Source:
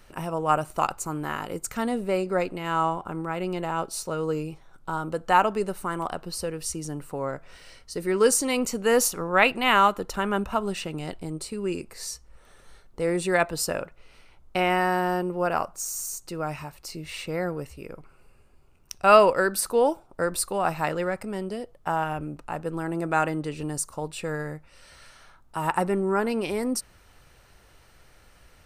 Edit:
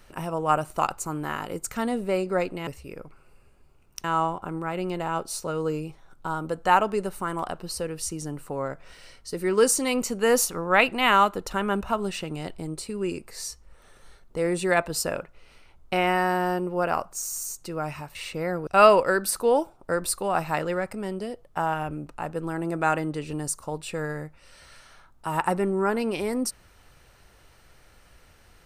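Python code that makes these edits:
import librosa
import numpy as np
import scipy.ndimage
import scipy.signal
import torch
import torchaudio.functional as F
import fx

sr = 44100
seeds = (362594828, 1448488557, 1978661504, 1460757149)

y = fx.edit(x, sr, fx.cut(start_s=16.78, length_s=0.3),
    fx.move(start_s=17.6, length_s=1.37, to_s=2.67), tone=tone)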